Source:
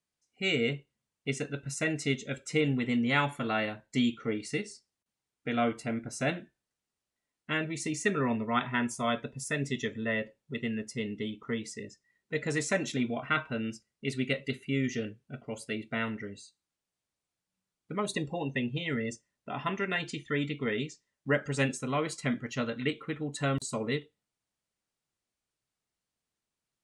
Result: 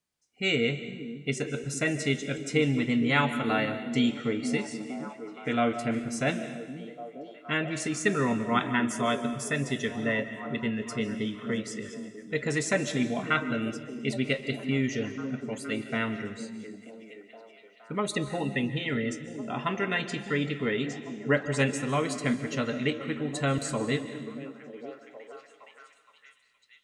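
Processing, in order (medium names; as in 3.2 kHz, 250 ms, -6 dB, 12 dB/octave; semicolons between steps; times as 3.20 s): repeats whose band climbs or falls 468 ms, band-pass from 220 Hz, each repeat 0.7 oct, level -6.5 dB; on a send at -11.5 dB: reverberation RT60 1.3 s, pre-delay 105 ms; on the sum: trim +2.5 dB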